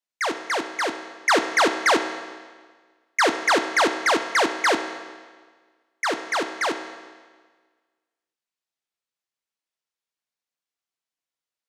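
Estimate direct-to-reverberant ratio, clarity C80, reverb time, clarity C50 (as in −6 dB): 7.0 dB, 10.5 dB, 1.5 s, 9.0 dB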